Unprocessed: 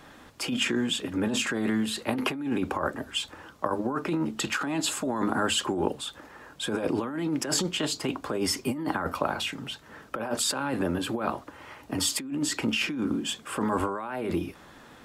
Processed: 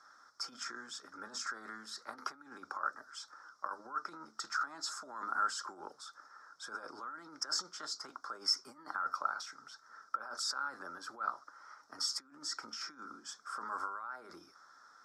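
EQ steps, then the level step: two resonant band-passes 2.7 kHz, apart 2 oct; +1.0 dB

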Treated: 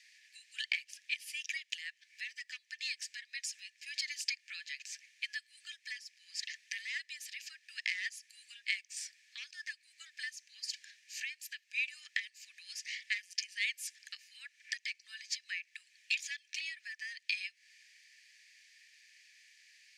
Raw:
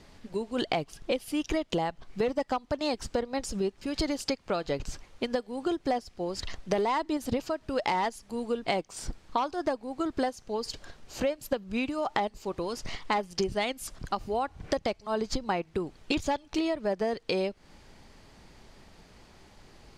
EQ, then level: rippled Chebyshev high-pass 1.7 kHz, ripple 6 dB; treble shelf 2.7 kHz -9.5 dB; +8.5 dB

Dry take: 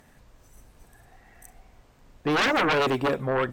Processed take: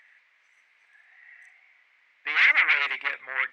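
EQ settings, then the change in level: resonant high-pass 2.1 kHz, resonance Q 5.9; tape spacing loss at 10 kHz 30 dB; +4.0 dB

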